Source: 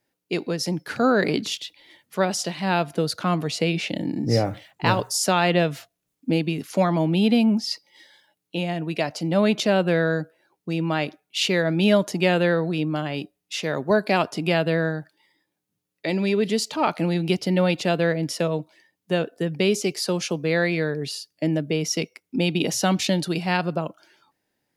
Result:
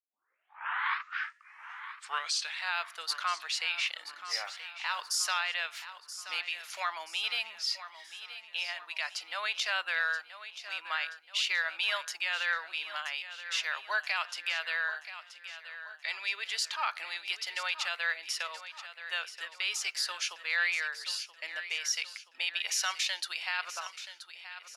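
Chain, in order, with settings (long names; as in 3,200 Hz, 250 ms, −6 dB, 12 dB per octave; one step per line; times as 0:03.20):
turntable start at the beginning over 2.77 s
high-pass filter 1,200 Hz 24 dB per octave
high-shelf EQ 8,900 Hz −11.5 dB
brickwall limiter −20 dBFS, peak gain reduction 9 dB
on a send: repeating echo 978 ms, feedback 47%, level −12.5 dB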